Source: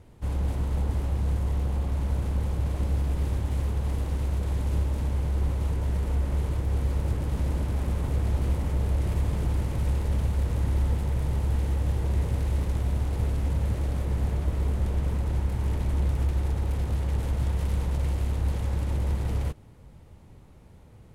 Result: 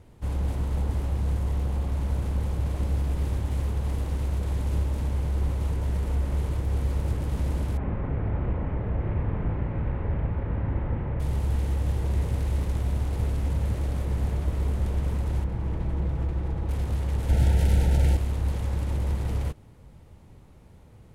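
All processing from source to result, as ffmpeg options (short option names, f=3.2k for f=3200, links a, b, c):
-filter_complex "[0:a]asettb=1/sr,asplit=3[a][b][c];[a]atrim=end=7.774[d];[b]atrim=start=7.77:end=11.2,asetpts=PTS-STARTPTS,afade=t=in:d=0.004:c=qsin,afade=t=out:st=3.426:d=0.004:c=qsin,lowpass=f=2.2k:w=0.5412,lowpass=f=2.2k:w=1.3066,asplit=2[e][f];[f]adelay=37,volume=-4dB[g];[e][g]amix=inputs=2:normalize=0,atrim=end_sample=151263[h];[c]atrim=start=11.196[i];[d][h]acrossfade=d=0.004:c1=hsin:c2=qsin[j];[j][i]acrossfade=d=0.004:c1=qsin:c2=hsin,asettb=1/sr,asplit=3[k][l][m];[k]atrim=end=15.444[n];[l]atrim=start=15.44:end=16.69,asetpts=PTS-STARTPTS,afade=t=in:d=0.004:c=qsin,afade=t=out:st=1.246:d=0.004:c=qsin,lowpass=f=1.5k:p=1,aecho=1:1:6.1:0.36,atrim=end_sample=55125[o];[m]atrim=start=16.686[p];[n][o]acrossfade=d=0.004:c1=hsin:c2=qsin[q];[q][p]acrossfade=d=0.004:c1=qsin:c2=hsin,asettb=1/sr,asplit=3[r][s][t];[r]atrim=end=17.294[u];[s]atrim=start=17.29:end=18.17,asetpts=PTS-STARTPTS,afade=t=in:d=0.004:c=qsin,afade=t=out:st=0.876:d=0.004:c=qsin,acontrast=54,asuperstop=centerf=1100:order=20:qfactor=3[v];[t]atrim=start=18.166[w];[u][v]acrossfade=d=0.004:c1=hsin:c2=qsin[x];[x][w]acrossfade=d=0.004:c1=qsin:c2=hsin"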